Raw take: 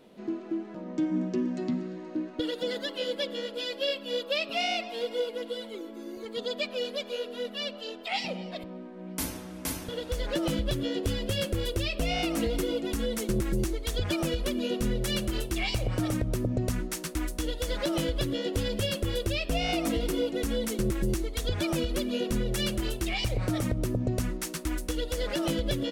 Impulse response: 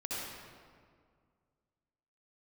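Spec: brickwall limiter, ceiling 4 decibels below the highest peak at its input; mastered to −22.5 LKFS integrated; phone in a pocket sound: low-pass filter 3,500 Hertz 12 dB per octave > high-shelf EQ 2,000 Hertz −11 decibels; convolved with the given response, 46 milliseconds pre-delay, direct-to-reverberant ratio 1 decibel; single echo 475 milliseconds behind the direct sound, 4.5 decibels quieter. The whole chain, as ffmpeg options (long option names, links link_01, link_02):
-filter_complex "[0:a]alimiter=limit=-22.5dB:level=0:latency=1,aecho=1:1:475:0.596,asplit=2[link_01][link_02];[1:a]atrim=start_sample=2205,adelay=46[link_03];[link_02][link_03]afir=irnorm=-1:irlink=0,volume=-4.5dB[link_04];[link_01][link_04]amix=inputs=2:normalize=0,lowpass=3500,highshelf=frequency=2000:gain=-11,volume=7.5dB"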